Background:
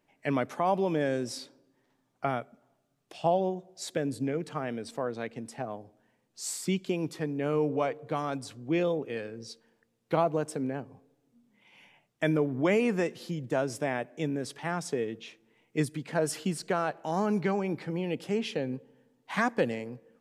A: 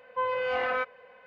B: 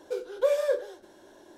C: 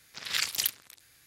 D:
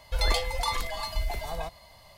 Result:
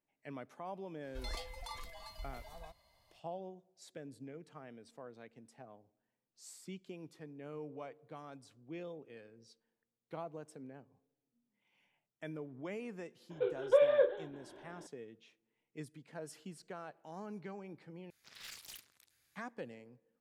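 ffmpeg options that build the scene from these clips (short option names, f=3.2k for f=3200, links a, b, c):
-filter_complex "[0:a]volume=-18dB[a];[2:a]aresample=8000,aresample=44100[b];[3:a]aeval=exprs='(tanh(28.2*val(0)+0.1)-tanh(0.1))/28.2':c=same[c];[a]asplit=2[d][e];[d]atrim=end=18.104[f];[c]atrim=end=1.26,asetpts=PTS-STARTPTS,volume=-15dB[g];[e]atrim=start=19.356[h];[4:a]atrim=end=2.17,asetpts=PTS-STARTPTS,volume=-17.5dB,afade=t=in:d=0.004:c=hsin,afade=t=out:st=2.166:d=0.004:c=hsin,adelay=1030[i];[b]atrim=end=1.57,asetpts=PTS-STARTPTS,volume=-2dB,afade=t=in:d=0.004:c=hsin,afade=t=out:st=1.566:d=0.004:c=hsin,adelay=13300[j];[f][g]acrossfade=d=0.004:c1=hsin:c2=hsin[k];[k][h]acrossfade=d=0.004:c1=hsin:c2=hsin[l];[l][i][j]amix=inputs=3:normalize=0"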